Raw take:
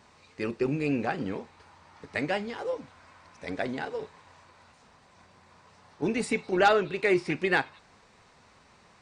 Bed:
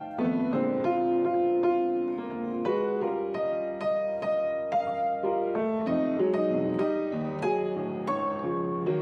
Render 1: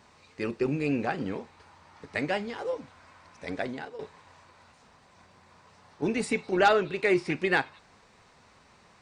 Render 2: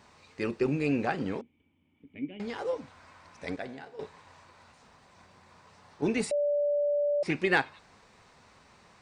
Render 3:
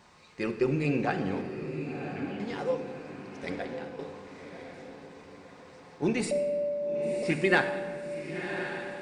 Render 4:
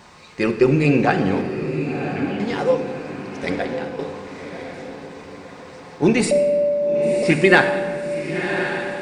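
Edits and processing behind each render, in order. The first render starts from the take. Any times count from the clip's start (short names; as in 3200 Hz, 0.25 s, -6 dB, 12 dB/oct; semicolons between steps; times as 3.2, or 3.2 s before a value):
3.55–3.99 fade out, to -10 dB
1.41–2.4 vocal tract filter i; 3.56–3.98 resonator 68 Hz, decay 1.1 s; 6.31–7.23 bleep 582 Hz -24 dBFS
diffused feedback echo 1.081 s, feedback 42%, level -8 dB; shoebox room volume 2300 m³, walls mixed, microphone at 0.91 m
gain +11.5 dB; limiter -1 dBFS, peak gain reduction 1.5 dB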